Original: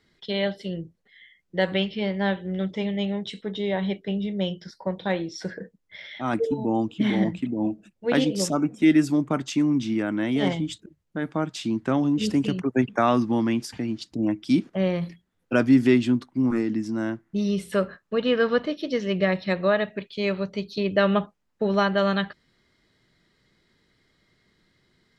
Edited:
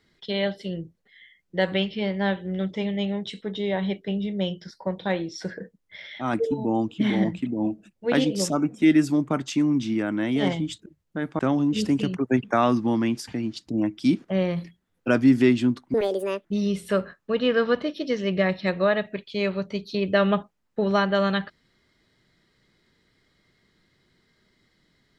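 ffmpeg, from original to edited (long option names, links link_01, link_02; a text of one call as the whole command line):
ffmpeg -i in.wav -filter_complex "[0:a]asplit=4[link_01][link_02][link_03][link_04];[link_01]atrim=end=11.392[link_05];[link_02]atrim=start=11.838:end=16.394[link_06];[link_03]atrim=start=16.39:end=17.28,asetpts=PTS-STARTPTS,asetrate=77175,aresample=44100[link_07];[link_04]atrim=start=17.276[link_08];[link_05][link_06]acrossfade=duration=0.004:curve1=hsin:curve2=hsin[link_09];[link_09][link_07]acrossfade=duration=0.004:curve1=hsin:curve2=hsin[link_10];[link_10][link_08]acrossfade=duration=0.004:curve1=hsin:curve2=hsin" out.wav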